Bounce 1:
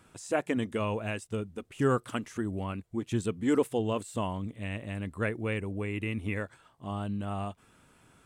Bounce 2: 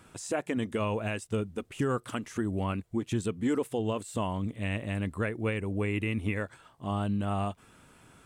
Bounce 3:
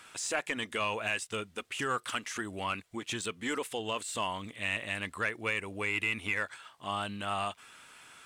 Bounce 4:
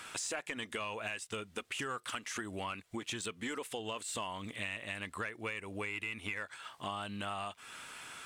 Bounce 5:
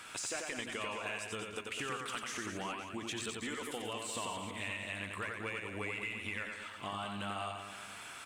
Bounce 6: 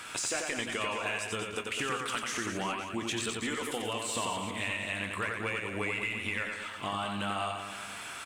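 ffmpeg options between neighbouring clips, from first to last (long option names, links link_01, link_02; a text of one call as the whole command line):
ffmpeg -i in.wav -af "alimiter=limit=-24dB:level=0:latency=1:release=234,volume=4dB" out.wav
ffmpeg -i in.wav -filter_complex "[0:a]tiltshelf=frequency=1300:gain=-9.5,asplit=2[link_01][link_02];[link_02]highpass=frequency=720:poles=1,volume=11dB,asoftclip=type=tanh:threshold=-17.5dB[link_03];[link_01][link_03]amix=inputs=2:normalize=0,lowpass=frequency=2500:poles=1,volume=-6dB" out.wav
ffmpeg -i in.wav -af "acompressor=threshold=-43dB:ratio=5,volume=5.5dB" out.wav
ffmpeg -i in.wav -filter_complex "[0:a]aeval=exprs='val(0)+0.000562*sin(2*PI*2300*n/s)':channel_layout=same,asplit=2[link_01][link_02];[link_02]aecho=0:1:90|202.5|343.1|518.9|738.6:0.631|0.398|0.251|0.158|0.1[link_03];[link_01][link_03]amix=inputs=2:normalize=0,volume=-2dB" out.wav
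ffmpeg -i in.wav -filter_complex "[0:a]asplit=2[link_01][link_02];[link_02]adelay=26,volume=-13dB[link_03];[link_01][link_03]amix=inputs=2:normalize=0,volume=6dB" out.wav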